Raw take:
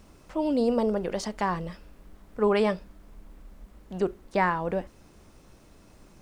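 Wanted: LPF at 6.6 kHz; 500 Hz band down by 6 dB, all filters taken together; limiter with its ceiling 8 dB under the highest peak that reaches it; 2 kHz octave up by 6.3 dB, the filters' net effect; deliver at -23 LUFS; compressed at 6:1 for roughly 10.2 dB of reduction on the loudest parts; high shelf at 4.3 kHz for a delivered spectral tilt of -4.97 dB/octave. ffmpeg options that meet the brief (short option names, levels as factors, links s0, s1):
-af "lowpass=6600,equalizer=f=500:t=o:g=-8,equalizer=f=2000:t=o:g=6.5,highshelf=f=4300:g=8,acompressor=threshold=0.0398:ratio=6,volume=5.01,alimiter=limit=0.266:level=0:latency=1"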